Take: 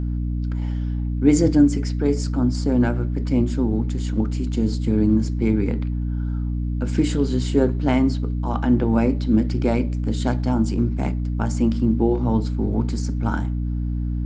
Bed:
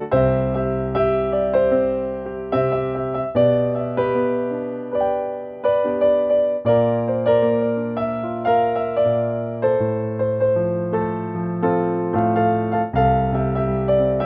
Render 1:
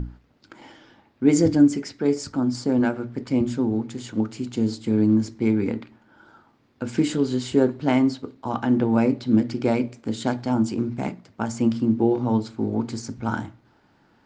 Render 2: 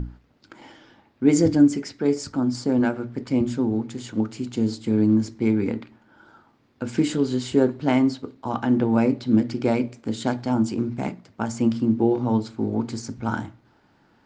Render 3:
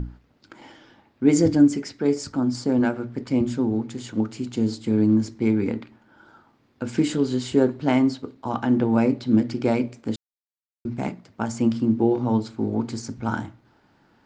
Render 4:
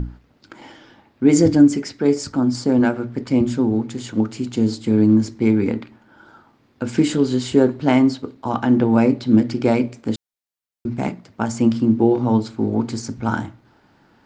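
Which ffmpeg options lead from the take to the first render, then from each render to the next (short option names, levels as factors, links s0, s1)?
-af "bandreject=f=60:t=h:w=6,bandreject=f=120:t=h:w=6,bandreject=f=180:t=h:w=6,bandreject=f=240:t=h:w=6,bandreject=f=300:t=h:w=6"
-af anull
-filter_complex "[0:a]asplit=3[s0][s1][s2];[s0]atrim=end=10.16,asetpts=PTS-STARTPTS,afade=t=out:st=10.156:d=0.004:c=hsin[s3];[s1]atrim=start=10.16:end=10.85,asetpts=PTS-STARTPTS,volume=0[s4];[s2]atrim=start=10.85,asetpts=PTS-STARTPTS,afade=t=in:d=0.004:c=hsin[s5];[s3][s4][s5]concat=n=3:v=0:a=1"
-af "volume=1.68,alimiter=limit=0.708:level=0:latency=1"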